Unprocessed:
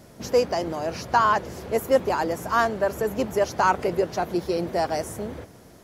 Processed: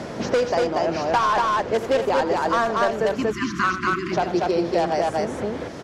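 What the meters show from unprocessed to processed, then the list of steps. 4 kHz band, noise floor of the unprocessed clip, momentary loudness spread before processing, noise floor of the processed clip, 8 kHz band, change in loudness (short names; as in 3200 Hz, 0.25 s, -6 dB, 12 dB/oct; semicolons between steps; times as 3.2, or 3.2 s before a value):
+4.0 dB, -49 dBFS, 8 LU, -33 dBFS, -1.0 dB, +2.0 dB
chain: spectral delete 3.08–4.12, 380–1000 Hz; low shelf 180 Hz -7 dB; in parallel at -7.5 dB: wrapped overs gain 16 dB; on the sum: air absorption 110 m; loudspeakers at several distances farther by 28 m -12 dB, 81 m -2 dB; three-band squash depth 70%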